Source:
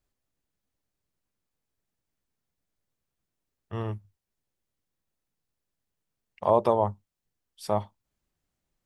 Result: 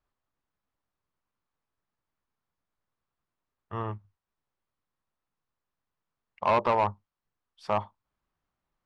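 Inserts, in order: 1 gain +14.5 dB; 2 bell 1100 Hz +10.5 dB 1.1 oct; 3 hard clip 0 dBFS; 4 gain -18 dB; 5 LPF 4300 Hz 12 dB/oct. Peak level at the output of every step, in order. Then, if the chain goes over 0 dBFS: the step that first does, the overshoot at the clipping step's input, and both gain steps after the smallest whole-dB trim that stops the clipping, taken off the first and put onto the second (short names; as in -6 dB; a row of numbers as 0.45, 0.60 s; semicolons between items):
+5.5, +10.0, 0.0, -18.0, -17.5 dBFS; step 1, 10.0 dB; step 1 +4.5 dB, step 4 -8 dB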